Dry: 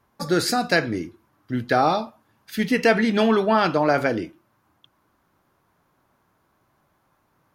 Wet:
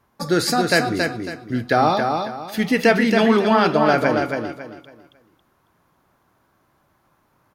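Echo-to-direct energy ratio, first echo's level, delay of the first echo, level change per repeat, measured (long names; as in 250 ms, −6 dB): −4.5 dB, −5.0 dB, 275 ms, −10.5 dB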